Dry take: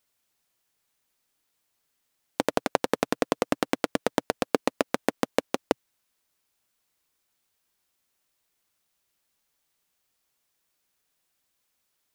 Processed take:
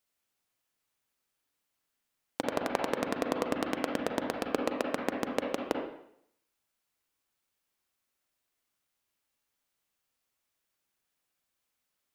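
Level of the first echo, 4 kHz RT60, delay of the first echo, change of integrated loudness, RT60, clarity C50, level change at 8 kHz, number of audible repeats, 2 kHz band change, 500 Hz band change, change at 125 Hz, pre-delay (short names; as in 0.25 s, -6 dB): none, 0.65 s, none, -4.5 dB, 0.70 s, 3.0 dB, -7.0 dB, none, -4.5 dB, -4.5 dB, -5.0 dB, 33 ms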